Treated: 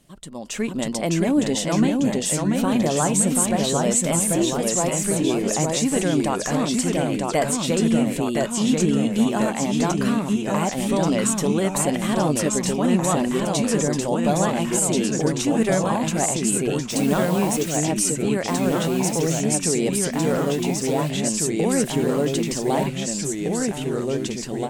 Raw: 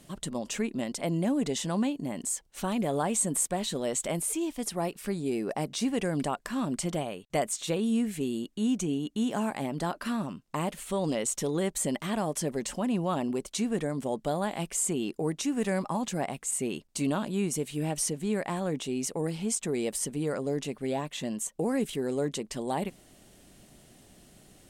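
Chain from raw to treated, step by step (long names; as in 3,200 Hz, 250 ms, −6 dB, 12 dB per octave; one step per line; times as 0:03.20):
0:16.89–0:17.76: background noise white −46 dBFS
flanger 0.18 Hz, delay 0.3 ms, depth 6.2 ms, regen +85%
delay with pitch and tempo change per echo 578 ms, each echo −1 semitone, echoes 3
automatic gain control gain up to 11.5 dB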